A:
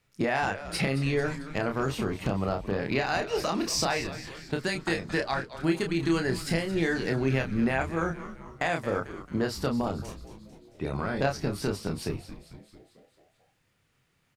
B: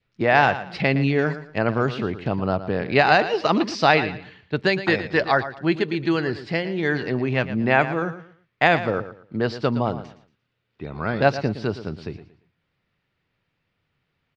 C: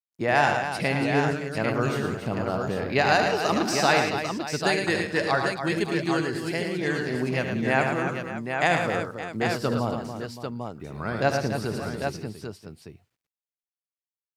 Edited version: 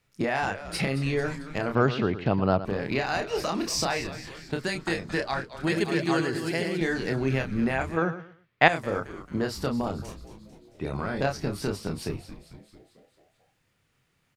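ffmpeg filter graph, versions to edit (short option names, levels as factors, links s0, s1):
-filter_complex "[1:a]asplit=2[s0][s1];[0:a]asplit=4[s2][s3][s4][s5];[s2]atrim=end=1.752[s6];[s0]atrim=start=1.748:end=2.652[s7];[s3]atrim=start=2.648:end=5.672[s8];[2:a]atrim=start=5.668:end=6.812[s9];[s4]atrim=start=6.808:end=7.972[s10];[s1]atrim=start=7.968:end=8.682[s11];[s5]atrim=start=8.678[s12];[s6][s7]acrossfade=d=0.004:c1=hsin:c2=hsin[s13];[s13][s8]acrossfade=d=0.004:c1=hsin:c2=hsin[s14];[s14][s9]acrossfade=d=0.004:c1=hsin:c2=hsin[s15];[s15][s10]acrossfade=d=0.004:c1=hsin:c2=hsin[s16];[s16][s11]acrossfade=d=0.004:c1=hsin:c2=hsin[s17];[s17][s12]acrossfade=d=0.004:c1=hsin:c2=hsin"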